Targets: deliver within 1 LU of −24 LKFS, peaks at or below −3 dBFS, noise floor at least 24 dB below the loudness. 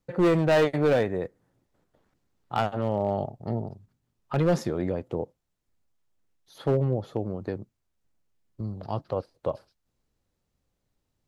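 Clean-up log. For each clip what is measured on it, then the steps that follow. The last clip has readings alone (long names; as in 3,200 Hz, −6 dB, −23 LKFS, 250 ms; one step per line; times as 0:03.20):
share of clipped samples 1.0%; peaks flattened at −16.5 dBFS; integrated loudness −27.5 LKFS; sample peak −16.5 dBFS; target loudness −24.0 LKFS
→ clipped peaks rebuilt −16.5 dBFS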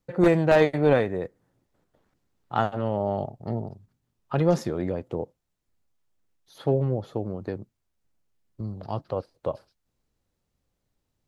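share of clipped samples 0.0%; integrated loudness −26.0 LKFS; sample peak −7.5 dBFS; target loudness −24.0 LKFS
→ level +2 dB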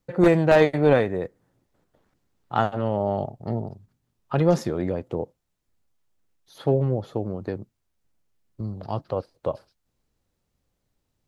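integrated loudness −24.0 LKFS; sample peak −5.5 dBFS; background noise floor −77 dBFS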